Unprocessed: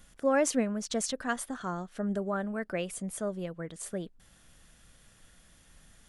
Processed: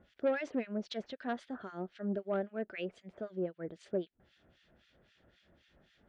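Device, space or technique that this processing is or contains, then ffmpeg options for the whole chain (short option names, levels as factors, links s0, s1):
guitar amplifier with harmonic tremolo: -filter_complex "[0:a]acrossover=split=1500[s0][s1];[s0]aeval=exprs='val(0)*(1-1/2+1/2*cos(2*PI*3.8*n/s))':c=same[s2];[s1]aeval=exprs='val(0)*(1-1/2-1/2*cos(2*PI*3.8*n/s))':c=same[s3];[s2][s3]amix=inputs=2:normalize=0,asoftclip=type=tanh:threshold=0.0422,highpass=75,equalizer=f=150:t=q:w=4:g=-5,equalizer=f=370:t=q:w=4:g=8,equalizer=f=610:t=q:w=4:g=5,equalizer=f=1100:t=q:w=4:g=-7,lowpass=f=4100:w=0.5412,lowpass=f=4100:w=1.3066"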